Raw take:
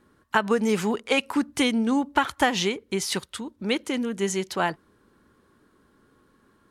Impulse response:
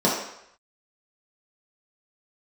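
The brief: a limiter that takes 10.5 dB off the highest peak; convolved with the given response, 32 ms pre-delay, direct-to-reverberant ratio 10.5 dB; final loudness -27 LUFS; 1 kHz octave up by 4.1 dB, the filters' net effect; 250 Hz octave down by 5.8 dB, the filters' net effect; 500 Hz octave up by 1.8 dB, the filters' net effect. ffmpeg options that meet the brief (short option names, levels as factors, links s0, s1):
-filter_complex "[0:a]equalizer=f=250:t=o:g=-8,equalizer=f=500:t=o:g=3.5,equalizer=f=1000:t=o:g=4.5,alimiter=limit=0.188:level=0:latency=1,asplit=2[s0][s1];[1:a]atrim=start_sample=2205,adelay=32[s2];[s1][s2]afir=irnorm=-1:irlink=0,volume=0.0398[s3];[s0][s3]amix=inputs=2:normalize=0,volume=0.944"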